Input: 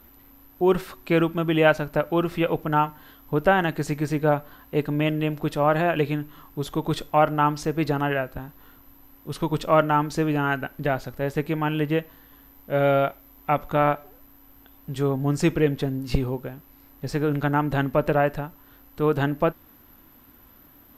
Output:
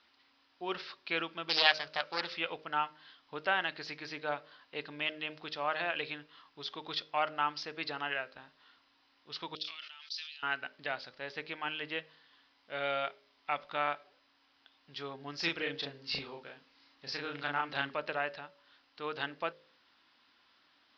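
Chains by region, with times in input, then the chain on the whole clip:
0:01.49–0:02.34: high-shelf EQ 3,400 Hz +10 dB + highs frequency-modulated by the lows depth 0.68 ms
0:09.55–0:10.43: flat-topped band-pass 4,800 Hz, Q 1.4 + level that may fall only so fast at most 48 dB per second
0:15.36–0:17.94: high-shelf EQ 10,000 Hz +7 dB + double-tracking delay 36 ms −2.5 dB
whole clip: Butterworth low-pass 5,100 Hz 72 dB per octave; first difference; hum removal 51.72 Hz, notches 12; level +6 dB

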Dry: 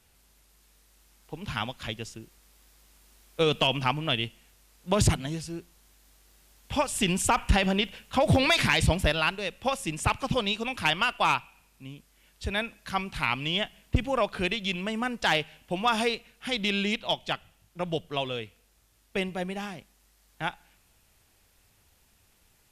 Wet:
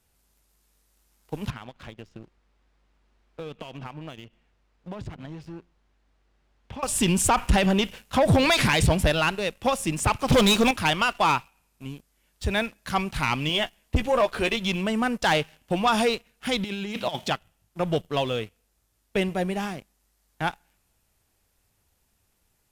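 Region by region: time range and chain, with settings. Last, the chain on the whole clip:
0:01.50–0:06.83: downward compressor 5 to 1, threshold −41 dBFS + low-pass filter 2,800 Hz
0:10.28–0:10.71: notch filter 2,800 Hz, Q 9.3 + leveller curve on the samples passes 3
0:13.49–0:14.57: parametric band 140 Hz −9.5 dB 1.1 octaves + double-tracking delay 13 ms −7.5 dB
0:16.64–0:17.31: low-shelf EQ 190 Hz +5.5 dB + compressor whose output falls as the input rises −32 dBFS, ratio −0.5 + high-pass filter 140 Hz
whole clip: parametric band 2,900 Hz −4 dB 1.9 octaves; leveller curve on the samples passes 2; level −1 dB

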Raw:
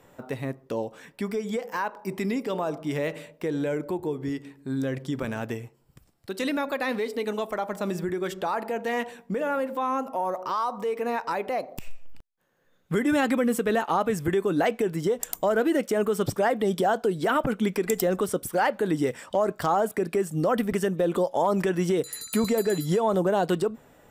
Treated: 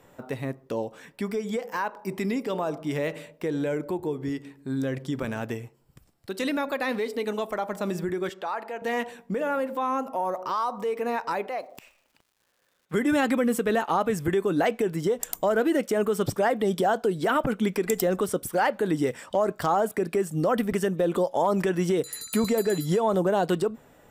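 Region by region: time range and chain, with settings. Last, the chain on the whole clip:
0:08.29–0:08.82: high-pass filter 800 Hz 6 dB per octave + high-shelf EQ 6,200 Hz −12 dB
0:11.46–0:12.93: high-pass filter 690 Hz 6 dB per octave + high-shelf EQ 4,600 Hz −7 dB + surface crackle 380 per second −56 dBFS
whole clip: no processing

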